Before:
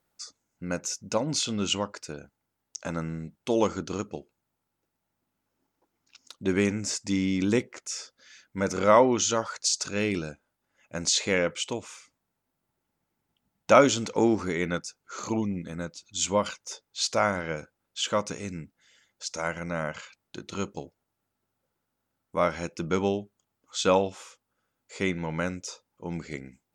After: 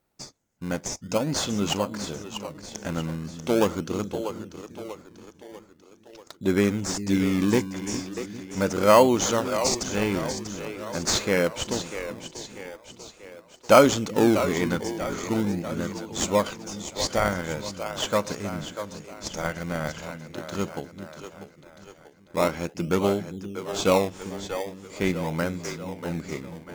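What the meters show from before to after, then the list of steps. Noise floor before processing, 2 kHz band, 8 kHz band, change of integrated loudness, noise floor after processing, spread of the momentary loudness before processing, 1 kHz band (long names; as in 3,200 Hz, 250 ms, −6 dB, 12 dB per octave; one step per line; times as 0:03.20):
−82 dBFS, +1.5 dB, +0.5 dB, +2.0 dB, −55 dBFS, 17 LU, +2.0 dB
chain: echo with a time of its own for lows and highs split 310 Hz, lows 403 ms, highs 641 ms, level −9.5 dB
in parallel at −4 dB: sample-and-hold swept by an LFO 23×, swing 100% 0.42 Hz
on the sum: level −1 dB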